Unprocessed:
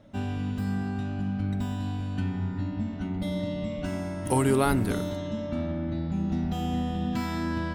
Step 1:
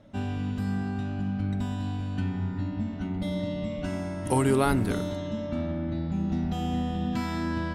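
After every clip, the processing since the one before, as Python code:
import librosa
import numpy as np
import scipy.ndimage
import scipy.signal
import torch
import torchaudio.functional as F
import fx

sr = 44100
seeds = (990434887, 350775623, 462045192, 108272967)

y = scipy.signal.sosfilt(scipy.signal.bessel(2, 11000.0, 'lowpass', norm='mag', fs=sr, output='sos'), x)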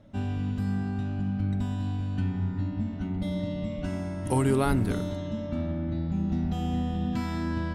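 y = fx.low_shelf(x, sr, hz=200.0, db=6.0)
y = y * 10.0 ** (-3.0 / 20.0)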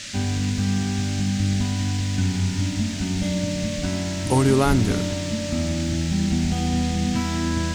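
y = fx.quant_dither(x, sr, seeds[0], bits=10, dither='none')
y = fx.dmg_noise_band(y, sr, seeds[1], low_hz=1600.0, high_hz=7400.0, level_db=-42.0)
y = y * 10.0 ** (6.0 / 20.0)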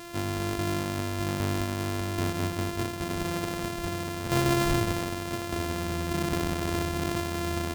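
y = np.r_[np.sort(x[:len(x) // 128 * 128].reshape(-1, 128), axis=1).ravel(), x[len(x) // 128 * 128:]]
y = y * 10.0 ** (-7.0 / 20.0)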